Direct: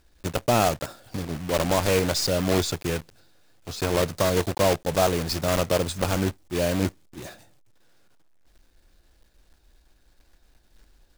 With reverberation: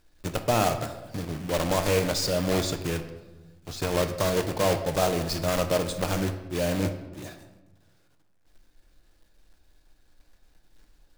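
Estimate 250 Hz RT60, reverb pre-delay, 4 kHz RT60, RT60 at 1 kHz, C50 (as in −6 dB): 1.5 s, 6 ms, 0.70 s, 1.1 s, 10.0 dB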